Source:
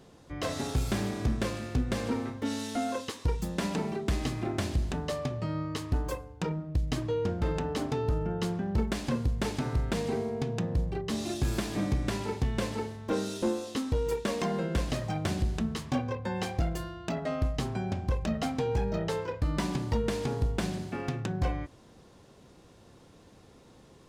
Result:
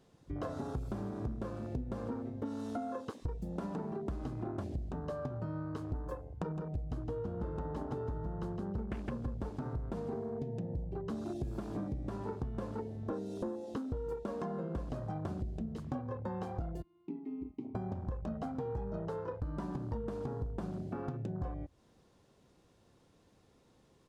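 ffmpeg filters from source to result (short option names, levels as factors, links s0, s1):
-filter_complex "[0:a]asplit=3[s0][s1][s2];[s0]afade=t=out:st=6.55:d=0.02[s3];[s1]aecho=1:1:162|324|486|648:0.562|0.197|0.0689|0.0241,afade=t=in:st=6.55:d=0.02,afade=t=out:st=9.48:d=0.02[s4];[s2]afade=t=in:st=9.48:d=0.02[s5];[s3][s4][s5]amix=inputs=3:normalize=0,asettb=1/sr,asplit=3[s6][s7][s8];[s6]atrim=end=16.824[s9];[s7]atrim=start=16.82:end=17.75,asetpts=PTS-STARTPTS,afade=t=in:d=0.004:c=qsin,afade=t=out:st=0.926:d=0.004:c=qsin,asplit=3[s10][s11][s12];[s10]bandpass=f=300:t=q:w=8,volume=1[s13];[s11]bandpass=f=870:t=q:w=8,volume=0.501[s14];[s12]bandpass=f=2240:t=q:w=8,volume=0.355[s15];[s13][s14][s15]amix=inputs=3:normalize=0[s16];[s8]atrim=start=17.746[s17];[s9][s16]acrossfade=d=0.004:c1=hsin:c2=qsin[s18];[s18][s17]acrossfade=d=0.004:c1=qsin:c2=hsin,afwtdn=0.0141,acompressor=threshold=0.00794:ratio=6,volume=1.88"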